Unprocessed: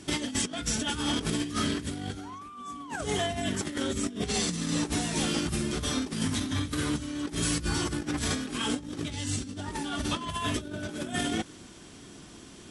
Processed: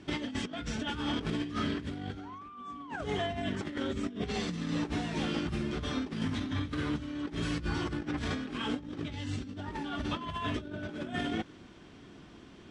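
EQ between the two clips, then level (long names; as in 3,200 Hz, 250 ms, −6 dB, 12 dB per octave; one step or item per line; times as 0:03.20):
low-pass filter 3,100 Hz 12 dB per octave
−3.0 dB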